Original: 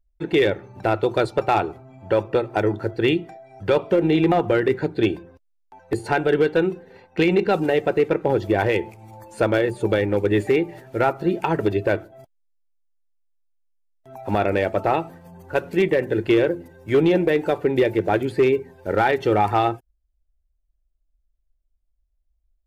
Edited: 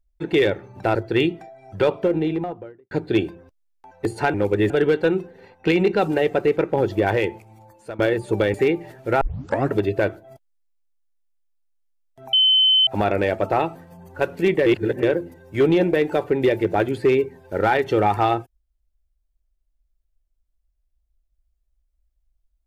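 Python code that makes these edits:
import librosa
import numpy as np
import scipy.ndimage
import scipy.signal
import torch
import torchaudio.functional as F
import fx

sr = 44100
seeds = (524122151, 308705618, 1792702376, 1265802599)

y = fx.studio_fade_out(x, sr, start_s=3.66, length_s=1.13)
y = fx.edit(y, sr, fx.cut(start_s=0.95, length_s=1.88),
    fx.fade_out_to(start_s=8.67, length_s=0.84, floor_db=-18.0),
    fx.move(start_s=10.06, length_s=0.36, to_s=6.22),
    fx.tape_start(start_s=11.09, length_s=0.51),
    fx.insert_tone(at_s=14.21, length_s=0.54, hz=3060.0, db=-12.5),
    fx.reverse_span(start_s=16.0, length_s=0.37), tone=tone)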